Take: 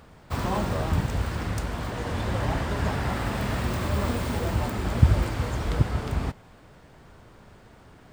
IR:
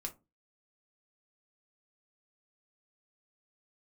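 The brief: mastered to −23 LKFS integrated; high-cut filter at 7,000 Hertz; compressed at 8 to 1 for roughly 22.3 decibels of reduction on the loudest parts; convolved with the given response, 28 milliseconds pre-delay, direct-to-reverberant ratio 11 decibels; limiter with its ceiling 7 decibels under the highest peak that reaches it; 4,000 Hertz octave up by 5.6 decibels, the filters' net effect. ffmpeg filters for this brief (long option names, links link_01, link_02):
-filter_complex "[0:a]lowpass=7000,equalizer=frequency=4000:width_type=o:gain=7.5,acompressor=threshold=-35dB:ratio=8,alimiter=level_in=8dB:limit=-24dB:level=0:latency=1,volume=-8dB,asplit=2[link_01][link_02];[1:a]atrim=start_sample=2205,adelay=28[link_03];[link_02][link_03]afir=irnorm=-1:irlink=0,volume=-9.5dB[link_04];[link_01][link_04]amix=inputs=2:normalize=0,volume=19.5dB"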